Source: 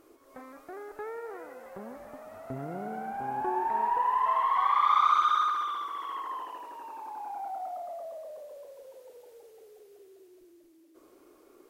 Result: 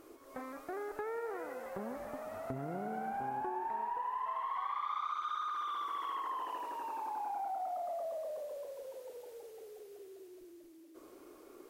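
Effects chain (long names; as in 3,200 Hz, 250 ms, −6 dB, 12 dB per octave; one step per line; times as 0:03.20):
downward compressor 8 to 1, threshold −38 dBFS, peak gain reduction 18.5 dB
level +2.5 dB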